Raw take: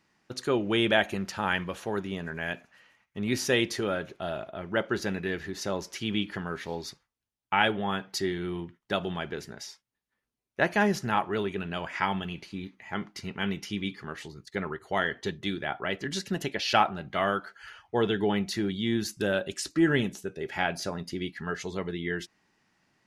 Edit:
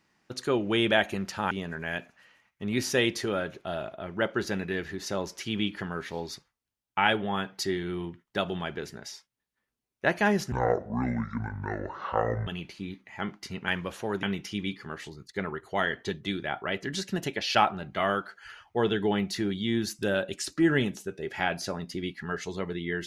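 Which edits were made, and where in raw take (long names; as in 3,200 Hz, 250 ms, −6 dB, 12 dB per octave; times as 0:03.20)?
0:01.51–0:02.06: move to 0:13.41
0:11.07–0:12.20: play speed 58%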